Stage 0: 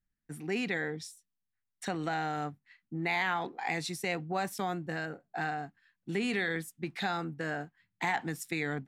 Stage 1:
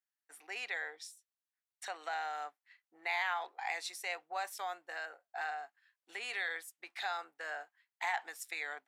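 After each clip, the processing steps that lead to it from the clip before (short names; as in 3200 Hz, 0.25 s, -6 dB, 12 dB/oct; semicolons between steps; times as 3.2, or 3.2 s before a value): HPF 630 Hz 24 dB/oct; gain -3.5 dB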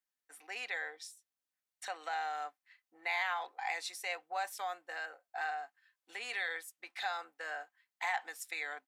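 comb 3.9 ms, depth 31%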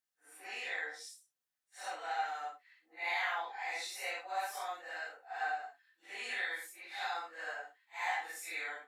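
phase scrambler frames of 0.2 s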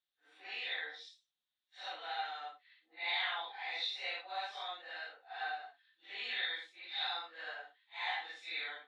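ladder low-pass 3900 Hz, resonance 75%; gain +7.5 dB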